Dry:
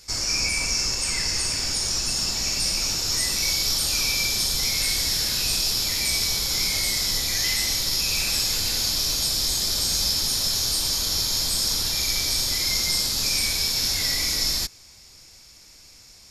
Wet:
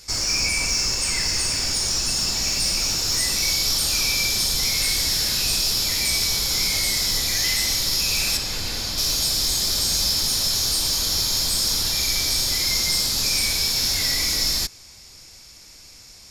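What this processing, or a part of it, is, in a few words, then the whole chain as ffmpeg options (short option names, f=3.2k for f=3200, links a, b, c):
parallel distortion: -filter_complex "[0:a]asplit=2[a][b];[b]asoftclip=type=hard:threshold=-27.5dB,volume=-6dB[c];[a][c]amix=inputs=2:normalize=0,asettb=1/sr,asplit=3[d][e][f];[d]atrim=end=8.374[g];[e]atrim=start=8.37:end=8.98,asetpts=PTS-STARTPTS,afade=t=in:d=0.004:c=qsin,afade=t=out:st=0.606:d=0.004:c=qsin,highshelf=f=4.4k:g=-10[h];[f]atrim=start=8.976[i];[g][h]acrossfade=d=0.004:c1=hsin:c2=qsin[j];[j][i]acrossfade=d=0.004:c1=qsin:c2=hsin"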